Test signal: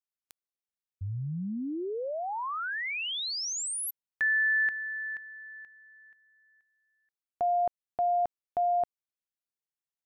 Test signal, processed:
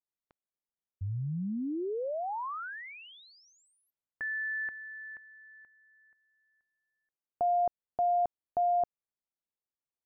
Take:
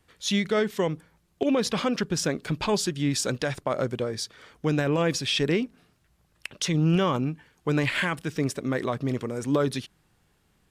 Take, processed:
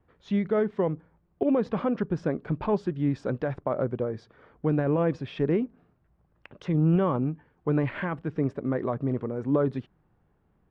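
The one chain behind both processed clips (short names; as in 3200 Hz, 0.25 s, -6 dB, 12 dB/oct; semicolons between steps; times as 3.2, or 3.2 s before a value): LPF 1100 Hz 12 dB/oct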